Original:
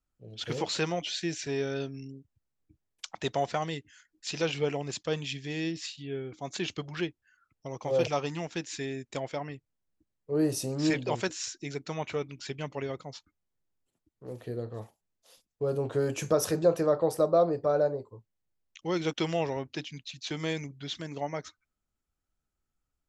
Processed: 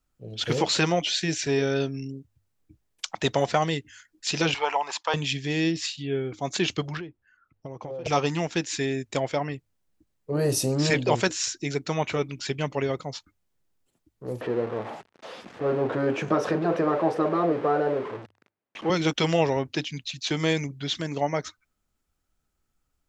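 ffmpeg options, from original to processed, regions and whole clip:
ffmpeg -i in.wav -filter_complex "[0:a]asettb=1/sr,asplit=3[link_01][link_02][link_03];[link_01]atrim=end=4.544[link_04];[link_02]atrim=start=4.54:end=5.14,asetpts=PTS-STARTPTS,afade=type=in:duration=0.004:curve=qsin,afade=type=out:start_time=0.596:duration=0.004:curve=qsin,highpass=frequency=920:width_type=q:width=5.5,highshelf=frequency=6700:gain=-9.5[link_05];[link_03]atrim=start=5.136[link_06];[link_04][link_05]acrossfade=duration=0.004:curve1=hsin:curve2=qsin[link_07];[link_07][link_06]acrossfade=duration=0.004:curve1=qsin:curve2=hsin,asettb=1/sr,asplit=3[link_08][link_09][link_10];[link_08]atrim=end=6.974[link_11];[link_09]atrim=start=6.97:end=8.06,asetpts=PTS-STARTPTS,afade=type=in:duration=0.004:curve=qsin,afade=type=out:start_time=1.086:duration=0.004:curve=qsin,lowpass=frequency=1200:poles=1,acompressor=threshold=-40dB:ratio=12:attack=3.2:release=140:knee=1:detection=peak[link_12];[link_10]atrim=start=8.056[link_13];[link_11][link_12]acrossfade=duration=0.004:curve1=hsin:curve2=qsin[link_14];[link_14][link_13]acrossfade=duration=0.004:curve1=qsin:curve2=hsin,asettb=1/sr,asplit=3[link_15][link_16][link_17];[link_15]atrim=end=14.414[link_18];[link_16]atrim=start=14.41:end=18.9,asetpts=PTS-STARTPTS,afade=type=in:duration=0.004:curve=qsin,afade=type=out:start_time=4.486:duration=0.004:curve=qsin,aeval=exprs='val(0)+0.5*0.015*sgn(val(0))':channel_layout=same,highpass=220,lowpass=2100[link_19];[link_17]atrim=start=18.896[link_20];[link_18][link_19]acrossfade=duration=0.004:curve1=hsin:curve2=qsin[link_21];[link_21][link_20]acrossfade=duration=0.004:curve1=qsin:curve2=hsin,bandreject=frequency=50:width_type=h:width=6,bandreject=frequency=100:width_type=h:width=6,afftfilt=real='re*lt(hypot(re,im),0.398)':imag='im*lt(hypot(re,im),0.398)':win_size=1024:overlap=0.75,volume=8dB" out.wav

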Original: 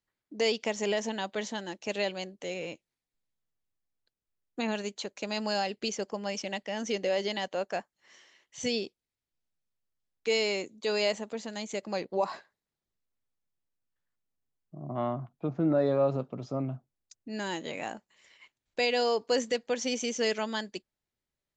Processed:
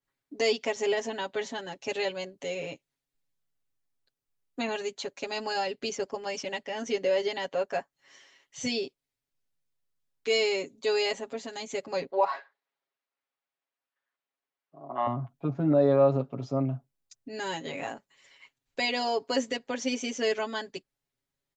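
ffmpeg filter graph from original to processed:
ffmpeg -i in.wav -filter_complex "[0:a]asettb=1/sr,asplit=3[link_01][link_02][link_03];[link_01]atrim=end=12.104[link_04];[link_02]atrim=start=12.1:end=15.07,asetpts=PTS-STARTPTS,afade=type=in:duration=0.004:curve=qsin,afade=type=out:start_time=2.966:duration=0.004:curve=qsin,acontrast=26,highpass=590,lowpass=3000[link_05];[link_03]atrim=start=15.066[link_06];[link_04][link_05]acrossfade=duration=0.004:curve1=hsin:curve2=qsin[link_07];[link_07][link_06]acrossfade=duration=0.004:curve1=qsin:curve2=hsin,aecho=1:1:7.3:0.92,adynamicequalizer=threshold=0.00631:dfrequency=3100:dqfactor=0.7:tfrequency=3100:tqfactor=0.7:attack=5:release=100:ratio=0.375:range=2.5:mode=cutabove:tftype=highshelf,volume=-1dB" out.wav

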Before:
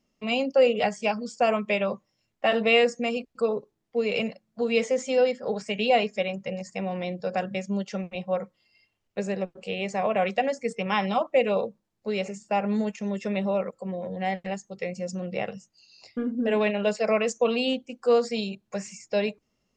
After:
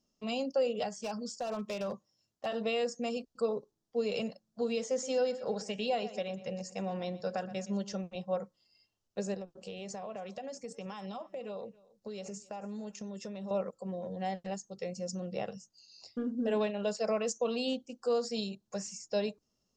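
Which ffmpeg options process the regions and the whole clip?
ffmpeg -i in.wav -filter_complex "[0:a]asettb=1/sr,asplit=3[link_01][link_02][link_03];[link_01]atrim=end=0.994[link_04];[link_02]atrim=start=0.99:end=2.46,asetpts=PTS-STARTPTS,afade=type=in:duration=0.004:curve=qsin,afade=type=out:start_time=1.466:duration=0.004:curve=qsin,highpass=49,acompressor=threshold=-24dB:ratio=8:attack=3.2:release=140:knee=1:detection=peak,asoftclip=type=hard:threshold=-24.5dB[link_05];[link_03]atrim=start=2.456[link_06];[link_04][link_05]acrossfade=duration=0.004:curve1=hsin:curve2=qsin[link_07];[link_07][link_06]acrossfade=duration=0.004:curve1=qsin:curve2=hsin,asettb=1/sr,asplit=3[link_08][link_09][link_10];[link_08]atrim=end=4.914[link_11];[link_09]atrim=start=4.91:end=7.93,asetpts=PTS-STARTPTS,afade=type=in:duration=0.004:curve=qsin,afade=type=out:start_time=3.016:duration=0.004:curve=qsin,equalizer=frequency=1600:width=1.3:gain=4,asplit=2[link_12][link_13];[link_13]adelay=119,lowpass=frequency=4800:poles=1,volume=-16dB,asplit=2[link_14][link_15];[link_15]adelay=119,lowpass=frequency=4800:poles=1,volume=0.37,asplit=2[link_16][link_17];[link_17]adelay=119,lowpass=frequency=4800:poles=1,volume=0.37[link_18];[link_12][link_14][link_16][link_18]amix=inputs=4:normalize=0,atrim=end_sample=133182[link_19];[link_10]atrim=start=7.926[link_20];[link_11][link_19]acrossfade=duration=0.004:curve1=hsin:curve2=qsin[link_21];[link_21][link_20]acrossfade=duration=0.004:curve1=qsin:curve2=hsin,asettb=1/sr,asplit=3[link_22][link_23][link_24];[link_22]atrim=end=9.344[link_25];[link_23]atrim=start=9.34:end=13.51,asetpts=PTS-STARTPTS,afade=type=in:duration=0.004:curve=qsin,afade=type=out:start_time=4.166:duration=0.004:curve=qsin,acompressor=threshold=-31dB:ratio=10:attack=3.2:release=140:knee=1:detection=peak,aecho=1:1:275:0.075,atrim=end_sample=183897[link_26];[link_24]atrim=start=13.506[link_27];[link_25][link_26]acrossfade=duration=0.004:curve1=hsin:curve2=qsin[link_28];[link_28][link_27]acrossfade=duration=0.004:curve1=qsin:curve2=hsin,equalizer=frequency=5700:width_type=o:width=1:gain=7.5,alimiter=limit=-15.5dB:level=0:latency=1:release=243,equalizer=frequency=2200:width_type=o:width=0.59:gain=-11.5,volume=-6dB" out.wav

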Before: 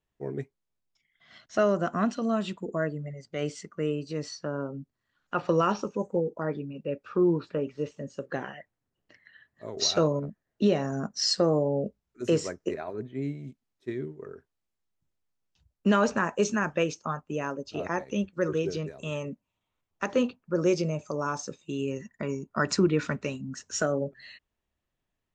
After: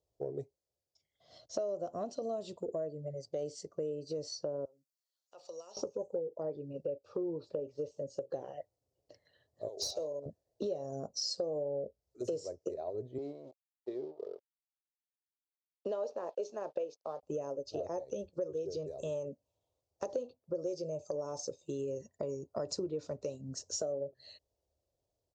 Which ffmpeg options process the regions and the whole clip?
ffmpeg -i in.wav -filter_complex "[0:a]asettb=1/sr,asplit=3[link_01][link_02][link_03];[link_01]atrim=end=4.654[link_04];[link_02]atrim=start=4.65:end=5.77,asetpts=PTS-STARTPTS,afade=type=in:duration=0.004:curve=qsin,afade=type=out:start_time=1.116:duration=0.004:curve=qsin,aderivative,acompressor=threshold=-48dB:ratio=2.5:attack=3.2:release=140:knee=1:detection=peak[link_05];[link_03]atrim=start=5.766[link_06];[link_04][link_05]acrossfade=duration=0.004:curve1=hsin:curve2=qsin[link_07];[link_07][link_06]acrossfade=duration=0.004:curve1=qsin:curve2=hsin,asettb=1/sr,asplit=3[link_08][link_09][link_10];[link_08]atrim=end=9.684[link_11];[link_09]atrim=start=9.68:end=10.26,asetpts=PTS-STARTPTS,afade=type=in:duration=0.004:curve=qsin,afade=type=out:start_time=0.576:duration=0.004:curve=qsin,highpass=frequency=1100:poles=1,equalizer=frequency=1600:width_type=o:width=1.2:gain=-10,aeval=exprs='clip(val(0),-1,0.0376)':channel_layout=same[link_12];[link_10]atrim=start=10.256[link_13];[link_11][link_12]acrossfade=duration=0.004:curve1=hsin:curve2=qsin[link_14];[link_14][link_13]acrossfade=duration=0.004:curve1=qsin:curve2=hsin,asettb=1/sr,asplit=3[link_15][link_16][link_17];[link_15]atrim=end=13.184[link_18];[link_16]atrim=start=13.18:end=17.23,asetpts=PTS-STARTPTS,afade=type=in:duration=0.004:curve=qsin,afade=type=out:start_time=4.046:duration=0.004:curve=qsin,aeval=exprs='sgn(val(0))*max(abs(val(0))-0.00282,0)':channel_layout=same,highpass=350,lowpass=3900[link_19];[link_17]atrim=start=17.226[link_20];[link_18][link_19]acrossfade=duration=0.004:curve1=hsin:curve2=qsin[link_21];[link_21][link_20]acrossfade=duration=0.004:curve1=qsin:curve2=hsin,firequalizer=gain_entry='entry(100,0);entry(200,-14);entry(300,-5);entry(540,7);entry(950,-9);entry(1500,-23);entry(2200,-21);entry(4600,0);entry(11000,-7)':delay=0.05:min_phase=1,acompressor=threshold=-38dB:ratio=5,highpass=59,volume=2.5dB" out.wav

